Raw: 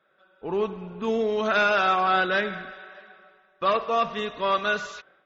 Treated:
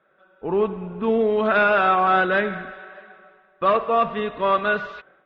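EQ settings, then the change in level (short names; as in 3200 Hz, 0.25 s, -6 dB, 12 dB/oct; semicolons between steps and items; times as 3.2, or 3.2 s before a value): air absorption 410 m; +6.0 dB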